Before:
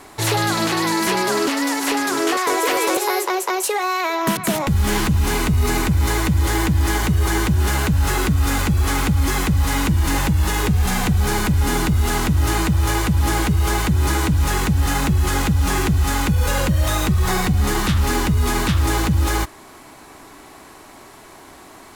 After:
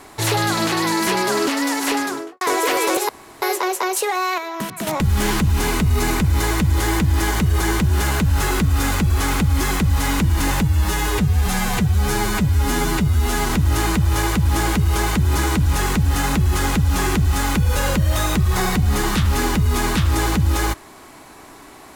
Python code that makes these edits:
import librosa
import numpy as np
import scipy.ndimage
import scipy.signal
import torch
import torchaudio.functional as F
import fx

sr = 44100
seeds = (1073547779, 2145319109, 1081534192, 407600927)

y = fx.studio_fade_out(x, sr, start_s=1.95, length_s=0.46)
y = fx.edit(y, sr, fx.insert_room_tone(at_s=3.09, length_s=0.33),
    fx.clip_gain(start_s=4.05, length_s=0.49, db=-7.0),
    fx.stretch_span(start_s=10.3, length_s=1.91, factor=1.5), tone=tone)